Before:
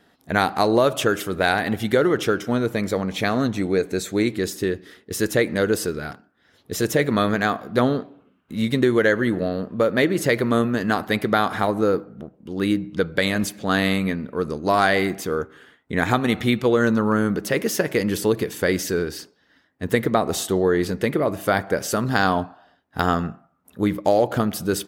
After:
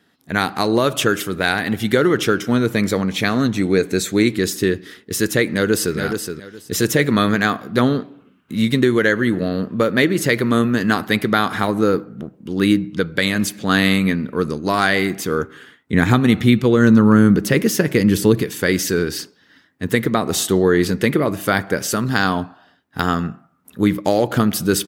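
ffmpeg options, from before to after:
-filter_complex "[0:a]asplit=2[s0][s1];[s1]afade=t=in:st=5.48:d=0.01,afade=t=out:st=5.97:d=0.01,aecho=0:1:420|840|1260:0.375837|0.0751675|0.0150335[s2];[s0][s2]amix=inputs=2:normalize=0,asettb=1/sr,asplit=3[s3][s4][s5];[s3]atrim=end=15.924[s6];[s4]atrim=start=15.92:end=18.42,asetpts=PTS-STARTPTS,afade=t=in:d=0.004:c=qsin,afade=t=out:st=2.496:d=0.004:c=qsin,lowshelf=f=340:g=8.5[s7];[s5]atrim=start=18.416[s8];[s6][s7]acrossfade=d=0.004:c1=hsin:c2=qsin[s9];[s9][s8]acrossfade=d=0.004:c1=qsin:c2=hsin,highpass=89,equalizer=f=660:w=1.1:g=-7.5,dynaudnorm=f=120:g=5:m=2.82"

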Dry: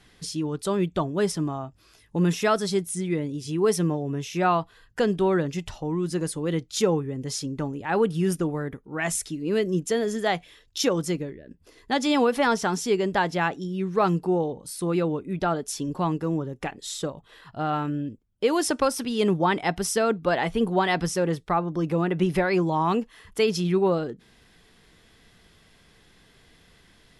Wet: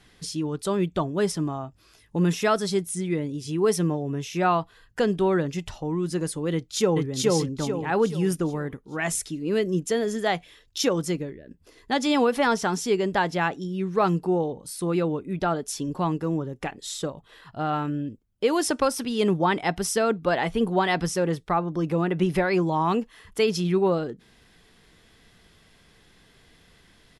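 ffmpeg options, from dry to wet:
-filter_complex "[0:a]asplit=2[s0][s1];[s1]afade=t=in:st=6.53:d=0.01,afade=t=out:st=7.05:d=0.01,aecho=0:1:430|860|1290|1720|2150|2580:1|0.4|0.16|0.064|0.0256|0.01024[s2];[s0][s2]amix=inputs=2:normalize=0"

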